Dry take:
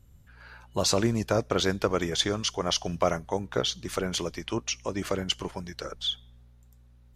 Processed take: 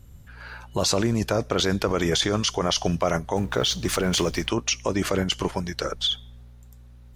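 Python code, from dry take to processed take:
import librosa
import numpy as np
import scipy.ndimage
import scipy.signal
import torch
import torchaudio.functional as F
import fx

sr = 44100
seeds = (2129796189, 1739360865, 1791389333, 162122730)

p1 = fx.law_mismatch(x, sr, coded='mu', at=(3.35, 4.47), fade=0.02)
p2 = fx.over_compress(p1, sr, threshold_db=-30.0, ratio=-0.5)
y = p1 + (p2 * librosa.db_to_amplitude(1.0))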